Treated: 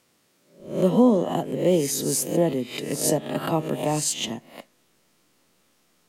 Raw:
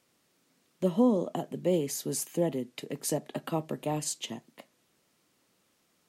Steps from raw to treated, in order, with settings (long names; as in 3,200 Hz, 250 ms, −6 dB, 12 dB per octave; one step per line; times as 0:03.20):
peak hold with a rise ahead of every peak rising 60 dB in 0.51 s
in parallel at −10 dB: slack as between gear wheels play −38 dBFS
on the sum: level +4 dB